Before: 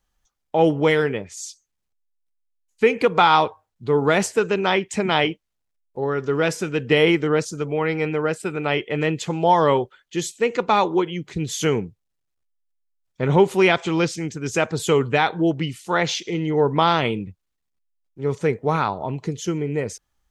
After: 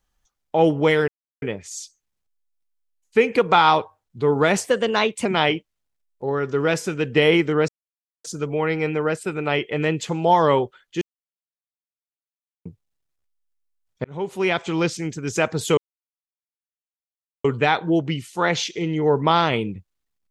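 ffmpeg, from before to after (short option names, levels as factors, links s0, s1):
-filter_complex "[0:a]asplit=9[s0][s1][s2][s3][s4][s5][s6][s7][s8];[s0]atrim=end=1.08,asetpts=PTS-STARTPTS,afade=t=out:st=1.076:d=0.004:c=hsin,apad=pad_dur=0.34[s9];[s1]atrim=start=1.08:end=4.304,asetpts=PTS-STARTPTS,afade=t=in:d=0.004:c=hsin[s10];[s2]atrim=start=4.3:end=5,asetpts=PTS-STARTPTS,asetrate=50274,aresample=44100[s11];[s3]atrim=start=4.996:end=7.43,asetpts=PTS-STARTPTS,afade=t=out:st=2.43:d=0.004:c=hsin,apad=pad_dur=0.56[s12];[s4]atrim=start=7.43:end=10.2,asetpts=PTS-STARTPTS,afade=t=in:d=0.004:c=hsin,afade=t=out:st=2.766:d=0.004:c=hsin[s13];[s5]atrim=start=10.2:end=11.84,asetpts=PTS-STARTPTS,volume=0[s14];[s6]atrim=start=11.84:end=13.23,asetpts=PTS-STARTPTS,afade=t=in:d=0.004:c=hsin,afade=t=out:st=1.386:d=0.004:c=hsin[s15];[s7]atrim=start=13.23:end=14.96,asetpts=PTS-STARTPTS,afade=t=in:d=1.13:c=qsin,afade=t=out:st=1.726:d=0.004:c=hsin,apad=pad_dur=1.67[s16];[s8]atrim=start=14.96,asetpts=PTS-STARTPTS,afade=t=in:d=0.004:c=hsin[s17];[s9][s10]concat=n=2:v=0:a=1[s18];[s18][s11]acrossfade=d=0.004:c1=hsin:c2=hsin[s19];[s12][s13][s14][s15][s16][s17]concat=n=6:v=0:a=1[s20];[s19][s20]acrossfade=d=0.004:c1=hsin:c2=hsin"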